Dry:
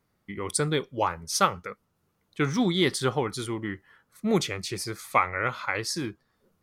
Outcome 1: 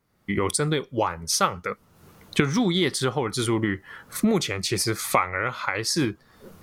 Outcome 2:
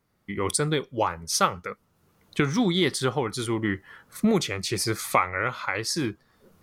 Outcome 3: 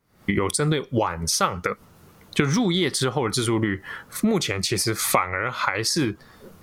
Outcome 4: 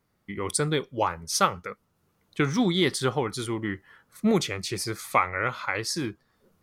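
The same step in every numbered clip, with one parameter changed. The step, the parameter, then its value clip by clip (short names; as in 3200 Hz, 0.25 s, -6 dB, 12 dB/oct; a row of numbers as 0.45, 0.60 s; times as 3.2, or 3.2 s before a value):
recorder AGC, rising by: 36, 14, 90, 5 dB/s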